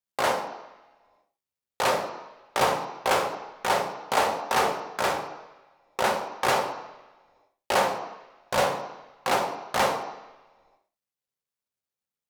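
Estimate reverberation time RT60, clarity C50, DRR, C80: 1.1 s, 7.5 dB, 3.0 dB, 10.0 dB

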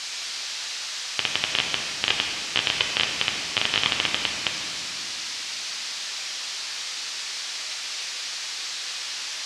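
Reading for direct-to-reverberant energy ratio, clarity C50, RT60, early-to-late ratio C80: 0.5 dB, 3.0 dB, 2.7 s, 4.5 dB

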